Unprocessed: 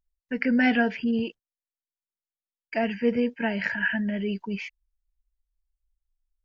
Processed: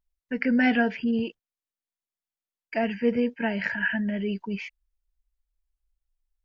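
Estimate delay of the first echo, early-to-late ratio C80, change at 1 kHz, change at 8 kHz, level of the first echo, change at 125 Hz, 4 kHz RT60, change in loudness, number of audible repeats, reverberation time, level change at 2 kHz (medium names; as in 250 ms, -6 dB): no echo, no reverb, 0.0 dB, no reading, no echo, 0.0 dB, no reverb, 0.0 dB, no echo, no reverb, -0.5 dB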